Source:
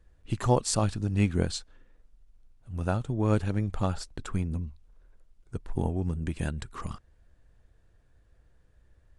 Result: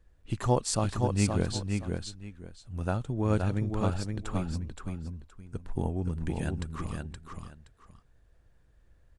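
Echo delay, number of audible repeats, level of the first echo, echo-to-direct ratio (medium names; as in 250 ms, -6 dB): 521 ms, 2, -4.5 dB, -4.5 dB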